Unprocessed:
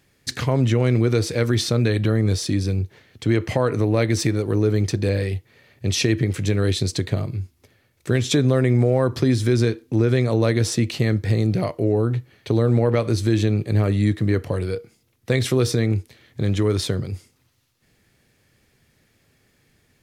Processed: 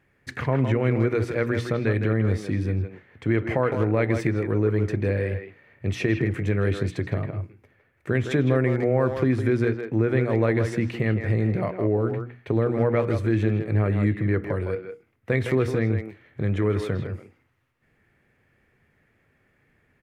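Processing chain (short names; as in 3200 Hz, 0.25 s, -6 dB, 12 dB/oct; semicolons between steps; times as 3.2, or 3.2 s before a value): resonant high shelf 3000 Hz -13.5 dB, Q 1.5; notches 60/120/180/240/300 Hz; speakerphone echo 0.16 s, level -6 dB; gain -3 dB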